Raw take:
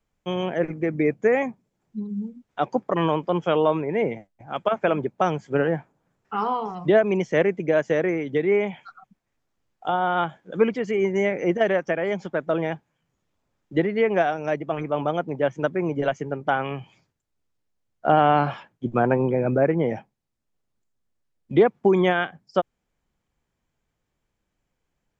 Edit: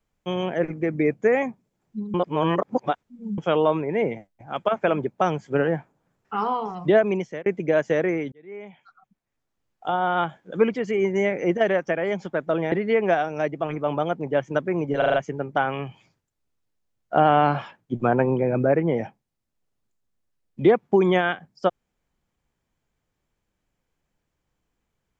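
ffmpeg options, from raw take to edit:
-filter_complex "[0:a]asplit=10[s0][s1][s2][s3][s4][s5][s6][s7][s8][s9];[s0]atrim=end=2.142[s10];[s1]atrim=start=2.138:end=3.382,asetpts=PTS-STARTPTS,areverse[s11];[s2]atrim=start=3.378:end=7.46,asetpts=PTS-STARTPTS,afade=t=out:st=3.692:d=0.39[s12];[s3]atrim=start=7.46:end=8.32,asetpts=PTS-STARTPTS,afade=t=in:d=0.004:c=hsin,afade=t=out:st=0.856:d=0.004:c=hsin[s13];[s4]atrim=start=8.32:end=12.722,asetpts=PTS-STARTPTS,afade=t=in:d=1.75[s14];[s5]atrim=start=13.798:end=16.102[s15];[s6]atrim=start=16.058:end=16.102[s16];[s7]atrim=start=16.058:end=16.102[s17];[s8]atrim=start=16.058:end=16.102[s18];[s9]atrim=start=16.058[s19];[s10][s11]acrossfade=d=0.004:c1=hsin:c2=hsin[s20];[s12][s13][s14]concat=n=3:v=0:a=1[s21];[s20][s21]acrossfade=d=0.004:c1=hsin:c2=hsin[s22];[s22][s15]acrossfade=d=0.004:c1=hsin:c2=hsin[s23];[s23][s16]acrossfade=d=0.004:c1=hsin:c2=hsin[s24];[s24][s17]acrossfade=d=0.004:c1=hsin:c2=hsin[s25];[s25][s18]acrossfade=d=0.004:c1=hsin:c2=hsin[s26];[s26][s19]acrossfade=d=0.004:c1=hsin:c2=hsin"

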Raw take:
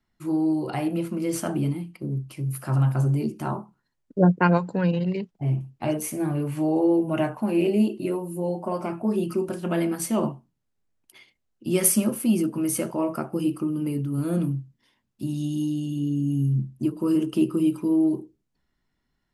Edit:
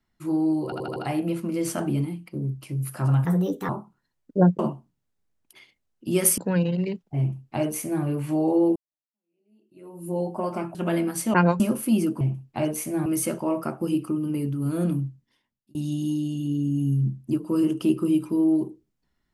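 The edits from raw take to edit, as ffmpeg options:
-filter_complex "[0:a]asplit=16[s0][s1][s2][s3][s4][s5][s6][s7][s8][s9][s10][s11][s12][s13][s14][s15];[s0]atrim=end=0.722[s16];[s1]atrim=start=0.638:end=0.722[s17];[s2]atrim=start=0.638:end=0.722[s18];[s3]atrim=start=0.638:end=0.722[s19];[s4]atrim=start=0.638:end=2.934[s20];[s5]atrim=start=2.93:end=3.5,asetpts=PTS-STARTPTS,asetrate=57330,aresample=44100,atrim=end_sample=19336,asetpts=PTS-STARTPTS[s21];[s6]atrim=start=3.496:end=4.402[s22];[s7]atrim=start=10.178:end=11.972[s23];[s8]atrim=start=4.658:end=7.04,asetpts=PTS-STARTPTS,afade=t=out:st=2.378:d=0.004:c=hsin[s24];[s9]atrim=start=7.04:end=9.032,asetpts=PTS-STARTPTS,afade=t=in:d=1.32:c=exp[s25];[s10]atrim=start=9.588:end=10.182[s26];[s11]atrim=start=4.398:end=4.662[s27];[s12]atrim=start=11.968:end=12.582[s28];[s13]atrim=start=5.468:end=6.322[s29];[s14]atrim=start=12.578:end=15.27,asetpts=PTS-STARTPTS,afade=t=out:st=2.002:d=0.69[s30];[s15]atrim=start=15.27,asetpts=PTS-STARTPTS,afade=t=in:d=0.004:c=hsin[s31];[s16][s17]acrossfade=d=0.004:c1=hsin:c2=hsin[s32];[s32][s18]acrossfade=d=0.004:c1=hsin:c2=hsin[s33];[s33][s19]acrossfade=d=0.004:c1=hsin:c2=hsin[s34];[s34][s20]acrossfade=d=0.004:c1=hsin:c2=hsin[s35];[s35][s21]acrossfade=d=0.004:c1=hsin:c2=hsin[s36];[s36][s22]acrossfade=d=0.004:c1=hsin:c2=hsin[s37];[s37][s23]acrossfade=d=0.004:c1=hsin:c2=hsin[s38];[s24][s25]concat=n=2:v=0:a=1[s39];[s38][s39]acrossfade=d=0.004:c1=hsin:c2=hsin[s40];[s40][s26]acrossfade=d=0.004:c1=hsin:c2=hsin[s41];[s41][s27]acrossfade=d=0.004:c1=hsin:c2=hsin[s42];[s42][s28]acrossfade=d=0.004:c1=hsin:c2=hsin[s43];[s43][s29]acrossfade=d=0.004:c1=hsin:c2=hsin[s44];[s30][s31]concat=n=2:v=0:a=1[s45];[s44][s45]acrossfade=d=0.004:c1=hsin:c2=hsin"

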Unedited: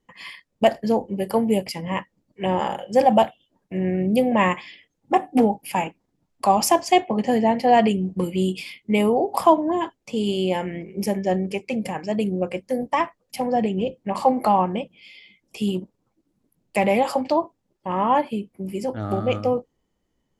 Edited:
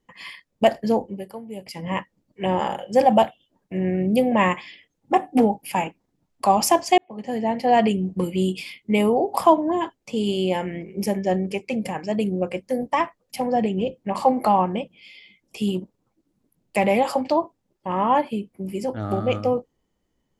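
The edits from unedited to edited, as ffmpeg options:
-filter_complex "[0:a]asplit=4[s0][s1][s2][s3];[s0]atrim=end=1.43,asetpts=PTS-STARTPTS,afade=t=out:st=1.02:d=0.41:c=qua:silence=0.141254[s4];[s1]atrim=start=1.43:end=1.45,asetpts=PTS-STARTPTS,volume=0.141[s5];[s2]atrim=start=1.45:end=6.98,asetpts=PTS-STARTPTS,afade=t=in:d=0.41:c=qua:silence=0.141254,afade=t=out:st=5.526:d=0.004:c=hsin[s6];[s3]atrim=start=6.98,asetpts=PTS-STARTPTS,afade=t=in:d=1.19:c=qsin[s7];[s4][s5][s6][s7]concat=n=4:v=0:a=1"

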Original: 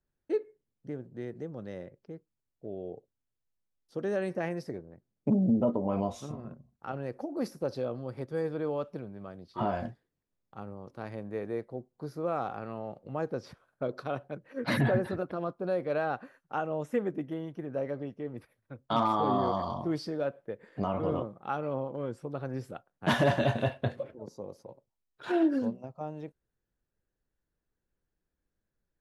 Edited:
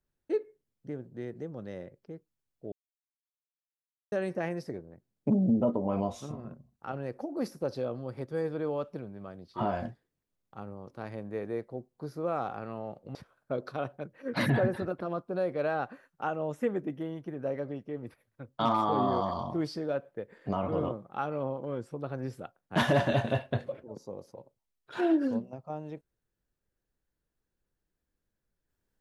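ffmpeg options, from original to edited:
-filter_complex "[0:a]asplit=4[s0][s1][s2][s3];[s0]atrim=end=2.72,asetpts=PTS-STARTPTS,afade=t=out:st=2.716:d=0.004:c=hsin[s4];[s1]atrim=start=2.72:end=4.12,asetpts=PTS-STARTPTS,volume=0[s5];[s2]atrim=start=4.12:end=13.152,asetpts=PTS-STARTPTS,afade=t=in:d=0.004:c=hsin[s6];[s3]atrim=start=13.458[s7];[s4][s5][s6]concat=n=3:v=0:a=1[s8];[s8][s7]acrossfade=d=0.004:c1=hsin:c2=hsin"

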